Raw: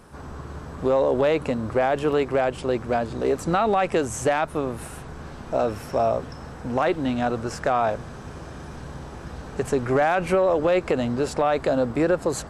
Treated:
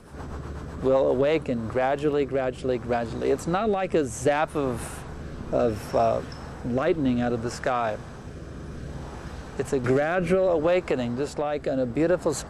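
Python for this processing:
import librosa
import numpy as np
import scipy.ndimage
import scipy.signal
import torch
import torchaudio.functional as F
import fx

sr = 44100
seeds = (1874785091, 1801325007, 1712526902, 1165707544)

y = fx.rider(x, sr, range_db=5, speed_s=2.0)
y = fx.rotary_switch(y, sr, hz=8.0, then_hz=0.65, switch_at_s=0.82)
y = fx.band_squash(y, sr, depth_pct=100, at=(9.84, 10.48))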